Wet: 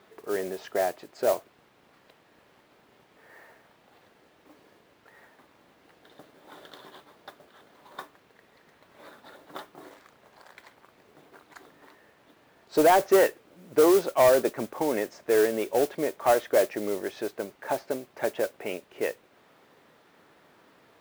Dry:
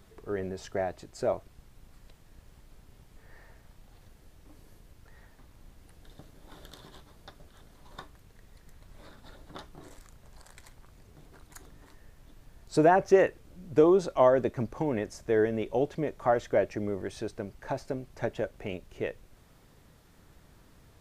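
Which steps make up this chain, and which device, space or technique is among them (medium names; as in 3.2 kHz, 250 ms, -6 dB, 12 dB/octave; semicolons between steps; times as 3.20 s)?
carbon microphone (band-pass 340–3300 Hz; saturation -18.5 dBFS, distortion -14 dB; modulation noise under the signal 16 dB); trim +6 dB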